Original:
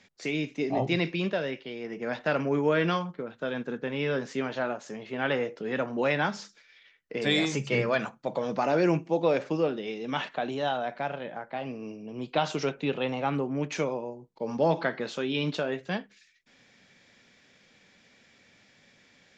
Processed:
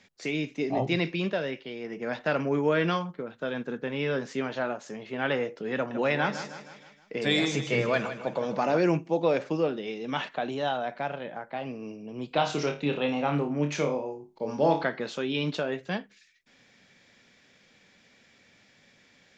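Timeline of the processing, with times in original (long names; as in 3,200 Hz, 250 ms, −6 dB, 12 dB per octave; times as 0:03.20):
0:05.75–0:08.78: repeating echo 157 ms, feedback 50%, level −11 dB
0:12.28–0:14.84: flutter between parallel walls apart 4.7 metres, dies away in 0.29 s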